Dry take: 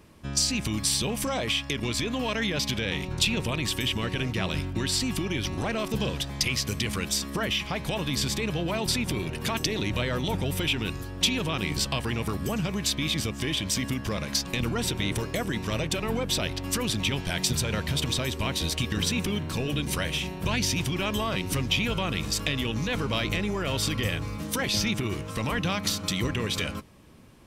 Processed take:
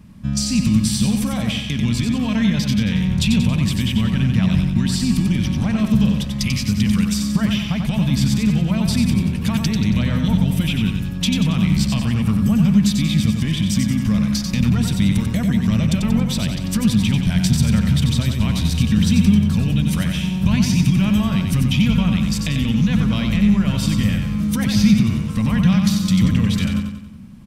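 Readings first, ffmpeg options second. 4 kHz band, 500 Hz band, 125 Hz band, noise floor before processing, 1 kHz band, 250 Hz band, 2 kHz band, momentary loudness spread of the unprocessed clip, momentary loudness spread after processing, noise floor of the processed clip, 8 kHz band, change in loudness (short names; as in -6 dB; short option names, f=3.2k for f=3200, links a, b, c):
+1.5 dB, -2.5 dB, +13.5 dB, -37 dBFS, +0.5 dB, +15.0 dB, +1.0 dB, 4 LU, 5 LU, -25 dBFS, +1.5 dB, +9.5 dB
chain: -af "lowshelf=f=280:t=q:w=3:g=9.5,aecho=1:1:92|184|276|368|460|552:0.531|0.255|0.122|0.0587|0.0282|0.0135"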